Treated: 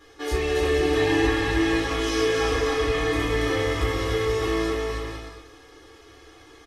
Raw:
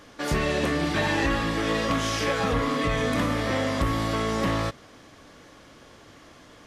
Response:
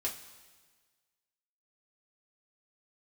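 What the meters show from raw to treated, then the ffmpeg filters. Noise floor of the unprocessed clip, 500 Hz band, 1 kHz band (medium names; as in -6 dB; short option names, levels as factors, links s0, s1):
-51 dBFS, +5.0 dB, -1.5 dB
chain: -filter_complex "[0:a]aecho=1:1:2.4:0.97,aecho=1:1:280|462|580.3|657.2|707.2:0.631|0.398|0.251|0.158|0.1[s0];[1:a]atrim=start_sample=2205,afade=t=out:st=0.37:d=0.01,atrim=end_sample=16758[s1];[s0][s1]afir=irnorm=-1:irlink=0,volume=0.473"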